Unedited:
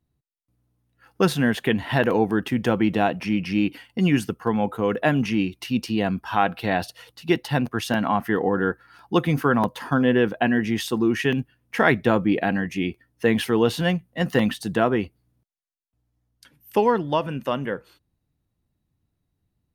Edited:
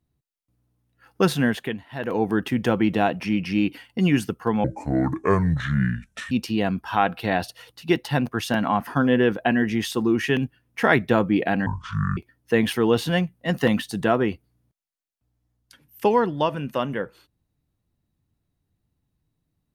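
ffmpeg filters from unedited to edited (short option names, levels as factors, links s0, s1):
-filter_complex "[0:a]asplit=8[s0][s1][s2][s3][s4][s5][s6][s7];[s0]atrim=end=1.85,asetpts=PTS-STARTPTS,afade=t=out:st=1.44:d=0.41:silence=0.11885[s8];[s1]atrim=start=1.85:end=1.91,asetpts=PTS-STARTPTS,volume=0.119[s9];[s2]atrim=start=1.91:end=4.644,asetpts=PTS-STARTPTS,afade=t=in:d=0.41:silence=0.11885[s10];[s3]atrim=start=4.64:end=5.71,asetpts=PTS-STARTPTS,asetrate=28224,aresample=44100[s11];[s4]atrim=start=5.706:end=8.272[s12];[s5]atrim=start=9.828:end=12.624[s13];[s6]atrim=start=12.62:end=12.89,asetpts=PTS-STARTPTS,asetrate=23373,aresample=44100,atrim=end_sample=22466,asetpts=PTS-STARTPTS[s14];[s7]atrim=start=12.886[s15];[s8][s9][s10]concat=n=3:v=0:a=1[s16];[s16][s11]acrossfade=d=0.004:c1=hsin:c2=hsin[s17];[s17][s12]acrossfade=d=0.004:c1=hsin:c2=hsin[s18];[s18][s13]acrossfade=d=0.004:c1=hsin:c2=hsin[s19];[s19][s14]acrossfade=d=0.004:c1=hsin:c2=hsin[s20];[s20][s15]acrossfade=d=0.004:c1=hsin:c2=hsin"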